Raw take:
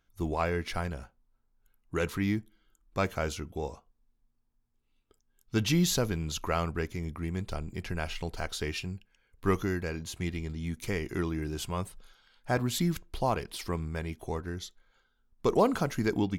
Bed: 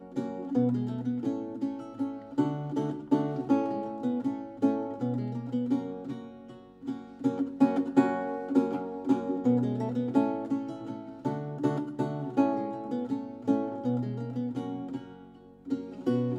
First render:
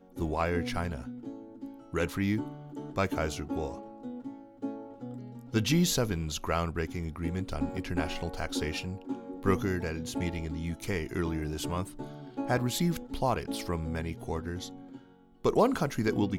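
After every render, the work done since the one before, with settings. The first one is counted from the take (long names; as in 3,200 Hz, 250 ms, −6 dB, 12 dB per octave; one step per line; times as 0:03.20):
mix in bed −10.5 dB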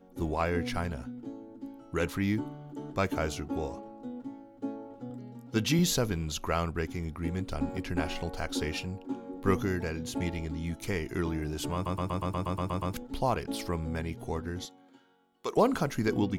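0:05.10–0:05.79: high-pass filter 110 Hz
0:11.74: stutter in place 0.12 s, 10 plays
0:14.65–0:15.57: high-pass filter 1,100 Hz 6 dB per octave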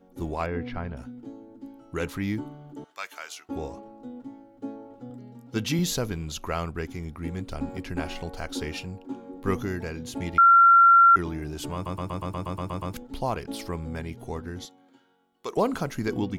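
0:00.46–0:00.97: high-frequency loss of the air 330 metres
0:02.84–0:03.49: high-pass filter 1,400 Hz
0:10.38–0:11.16: beep over 1,370 Hz −11.5 dBFS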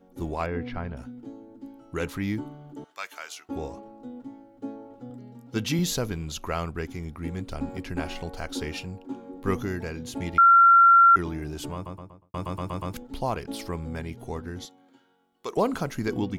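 0:11.52–0:12.34: fade out and dull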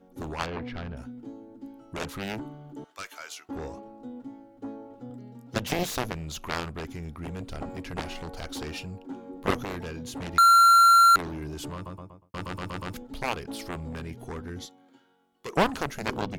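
harmonic generator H 2 −40 dB, 5 −28 dB, 7 −10 dB, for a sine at −11 dBFS
slew-rate limiting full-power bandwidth 370 Hz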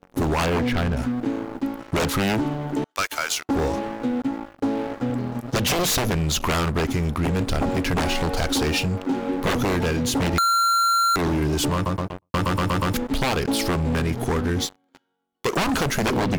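leveller curve on the samples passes 5
downward compressor, threshold −20 dBFS, peak gain reduction 7 dB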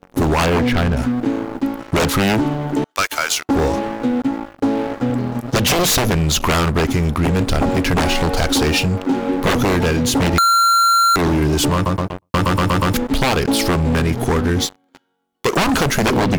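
level +6 dB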